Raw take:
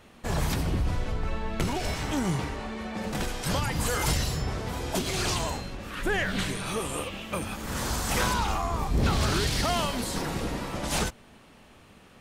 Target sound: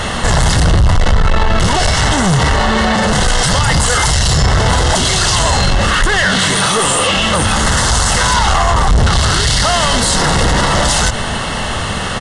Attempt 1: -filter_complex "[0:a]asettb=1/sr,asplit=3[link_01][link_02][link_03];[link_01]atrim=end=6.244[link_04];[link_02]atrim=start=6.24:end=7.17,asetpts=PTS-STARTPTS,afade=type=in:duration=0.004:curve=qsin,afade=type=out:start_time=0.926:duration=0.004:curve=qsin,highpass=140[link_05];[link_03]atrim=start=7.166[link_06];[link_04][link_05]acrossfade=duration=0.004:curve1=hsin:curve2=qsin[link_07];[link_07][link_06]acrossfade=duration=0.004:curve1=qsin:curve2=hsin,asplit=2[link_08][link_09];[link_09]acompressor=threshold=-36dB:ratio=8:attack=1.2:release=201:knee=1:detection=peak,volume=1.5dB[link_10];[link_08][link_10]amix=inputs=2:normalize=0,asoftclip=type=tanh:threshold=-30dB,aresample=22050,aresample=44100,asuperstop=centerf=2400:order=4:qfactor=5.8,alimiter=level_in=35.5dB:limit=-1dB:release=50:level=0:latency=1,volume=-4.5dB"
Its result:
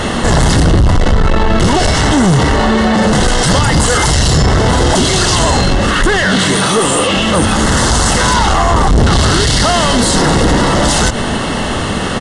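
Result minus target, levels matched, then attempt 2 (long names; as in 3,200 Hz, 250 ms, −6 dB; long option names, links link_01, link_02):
downward compressor: peak gain reduction +5.5 dB; 250 Hz band +5.0 dB
-filter_complex "[0:a]asettb=1/sr,asplit=3[link_01][link_02][link_03];[link_01]atrim=end=6.244[link_04];[link_02]atrim=start=6.24:end=7.17,asetpts=PTS-STARTPTS,afade=type=in:duration=0.004:curve=qsin,afade=type=out:start_time=0.926:duration=0.004:curve=qsin,highpass=140[link_05];[link_03]atrim=start=7.166[link_06];[link_04][link_05]acrossfade=duration=0.004:curve1=hsin:curve2=qsin[link_07];[link_07][link_06]acrossfade=duration=0.004:curve1=qsin:curve2=hsin,asplit=2[link_08][link_09];[link_09]acompressor=threshold=-29.5dB:ratio=8:attack=1.2:release=201:knee=1:detection=peak,volume=1.5dB[link_10];[link_08][link_10]amix=inputs=2:normalize=0,asoftclip=type=tanh:threshold=-30dB,aresample=22050,aresample=44100,asuperstop=centerf=2400:order=4:qfactor=5.8,equalizer=frequency=300:width_type=o:width=1.4:gain=-10,alimiter=level_in=35.5dB:limit=-1dB:release=50:level=0:latency=1,volume=-4.5dB"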